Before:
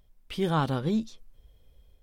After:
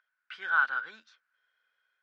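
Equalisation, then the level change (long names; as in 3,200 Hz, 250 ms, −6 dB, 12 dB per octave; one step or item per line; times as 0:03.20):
high-pass with resonance 1,500 Hz, resonance Q 15
high-frequency loss of the air 190 metres
parametric band 3,500 Hz −3 dB 0.42 octaves
−4.0 dB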